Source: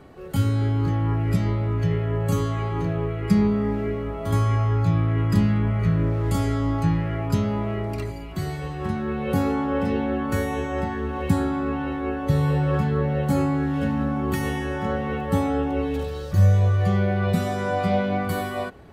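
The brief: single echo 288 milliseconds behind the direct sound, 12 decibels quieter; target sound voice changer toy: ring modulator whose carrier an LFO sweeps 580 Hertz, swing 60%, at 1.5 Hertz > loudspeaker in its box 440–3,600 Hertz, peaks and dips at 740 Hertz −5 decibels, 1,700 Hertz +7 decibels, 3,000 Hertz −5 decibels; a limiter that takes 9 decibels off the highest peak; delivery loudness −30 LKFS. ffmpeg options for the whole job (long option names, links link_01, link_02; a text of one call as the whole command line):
ffmpeg -i in.wav -af "alimiter=limit=-15.5dB:level=0:latency=1,aecho=1:1:288:0.251,aeval=exprs='val(0)*sin(2*PI*580*n/s+580*0.6/1.5*sin(2*PI*1.5*n/s))':channel_layout=same,highpass=440,equalizer=frequency=740:width_type=q:width=4:gain=-5,equalizer=frequency=1700:width_type=q:width=4:gain=7,equalizer=frequency=3000:width_type=q:width=4:gain=-5,lowpass=frequency=3600:width=0.5412,lowpass=frequency=3600:width=1.3066,volume=-0.5dB" out.wav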